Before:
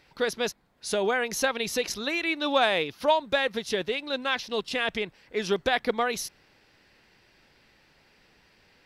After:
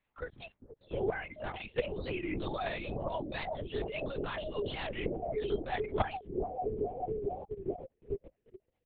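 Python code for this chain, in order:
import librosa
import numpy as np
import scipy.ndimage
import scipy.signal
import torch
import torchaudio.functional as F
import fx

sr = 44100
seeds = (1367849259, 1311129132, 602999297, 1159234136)

y = fx.echo_bbd(x, sr, ms=431, stages=2048, feedback_pct=74, wet_db=-9)
y = fx.level_steps(y, sr, step_db=23)
y = fx.air_absorb(y, sr, metres=63.0)
y = fx.over_compress(y, sr, threshold_db=-31.0, ratio=-0.5)
y = fx.noise_reduce_blind(y, sr, reduce_db=22)
y = fx.dynamic_eq(y, sr, hz=430.0, q=1.3, threshold_db=-55.0, ratio=4.0, max_db=6)
y = y + 0.4 * np.pad(y, (int(2.8 * sr / 1000.0), 0))[:len(y)]
y = (np.kron(scipy.signal.resample_poly(y, 1, 6), np.eye(6)[0]) * 6)[:len(y)]
y = fx.lpc_vocoder(y, sr, seeds[0], excitation='whisper', order=8)
y = fx.record_warp(y, sr, rpm=45.0, depth_cents=160.0)
y = y * librosa.db_to_amplitude(3.0)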